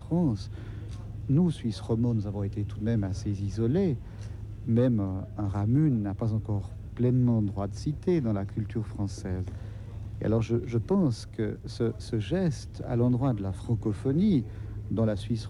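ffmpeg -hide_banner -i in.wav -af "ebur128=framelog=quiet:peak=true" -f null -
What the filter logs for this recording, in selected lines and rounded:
Integrated loudness:
  I:         -28.9 LUFS
  Threshold: -39.2 LUFS
Loudness range:
  LRA:         2.7 LU
  Threshold: -49.3 LUFS
  LRA low:   -30.7 LUFS
  LRA high:  -28.0 LUFS
True peak:
  Peak:      -13.9 dBFS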